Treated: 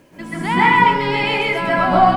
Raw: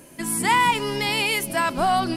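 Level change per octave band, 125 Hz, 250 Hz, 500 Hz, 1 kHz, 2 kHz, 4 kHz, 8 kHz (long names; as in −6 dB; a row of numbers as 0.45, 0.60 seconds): +8.5 dB, +6.5 dB, +7.5 dB, +7.0 dB, +6.5 dB, +0.5 dB, below −15 dB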